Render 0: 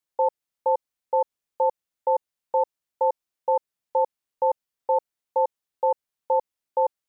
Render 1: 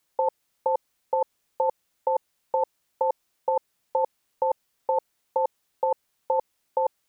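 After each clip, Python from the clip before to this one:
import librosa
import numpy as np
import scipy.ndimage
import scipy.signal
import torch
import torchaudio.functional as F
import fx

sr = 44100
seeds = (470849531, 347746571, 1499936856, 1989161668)

y = fx.over_compress(x, sr, threshold_db=-28.0, ratio=-1.0)
y = F.gain(torch.from_numpy(y), 5.5).numpy()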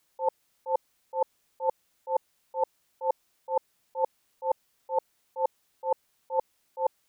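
y = fx.auto_swell(x, sr, attack_ms=138.0)
y = F.gain(torch.from_numpy(y), 2.5).numpy()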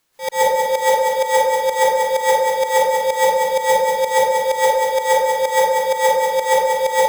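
y = fx.halfwave_hold(x, sr)
y = fx.echo_feedback(y, sr, ms=190, feedback_pct=36, wet_db=-5)
y = fx.rev_plate(y, sr, seeds[0], rt60_s=0.96, hf_ratio=0.55, predelay_ms=120, drr_db=-10.0)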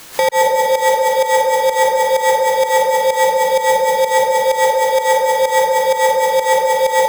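y = fx.band_squash(x, sr, depth_pct=100)
y = F.gain(torch.from_numpy(y), 1.5).numpy()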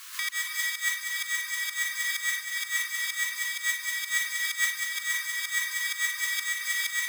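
y = fx.brickwall_highpass(x, sr, low_hz=1000.0)
y = y + 10.0 ** (-7.0 / 20.0) * np.pad(y, (int(281 * sr / 1000.0), 0))[:len(y)]
y = fx.am_noise(y, sr, seeds[1], hz=5.7, depth_pct=60)
y = F.gain(torch.from_numpy(y), -4.5).numpy()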